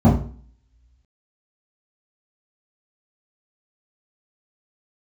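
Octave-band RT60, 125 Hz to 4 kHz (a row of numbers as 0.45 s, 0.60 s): 0.50 s, 0.50 s, 0.45 s, 0.40 s, 0.45 s, 2.1 s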